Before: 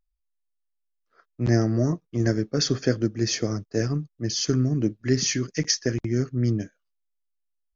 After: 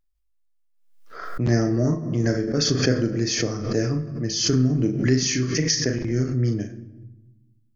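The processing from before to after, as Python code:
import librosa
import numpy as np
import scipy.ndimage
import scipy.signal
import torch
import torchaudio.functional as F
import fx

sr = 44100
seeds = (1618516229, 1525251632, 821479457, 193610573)

y = fx.doubler(x, sr, ms=39.0, db=-6.5)
y = fx.room_shoebox(y, sr, seeds[0], volume_m3=450.0, walls='mixed', distance_m=0.39)
y = fx.pre_swell(y, sr, db_per_s=59.0)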